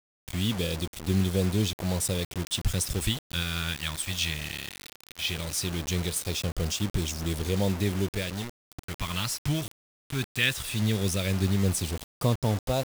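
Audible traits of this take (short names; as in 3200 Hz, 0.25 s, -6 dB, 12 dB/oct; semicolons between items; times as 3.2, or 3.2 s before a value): phasing stages 2, 0.18 Hz, lowest notch 500–1700 Hz; a quantiser's noise floor 6-bit, dither none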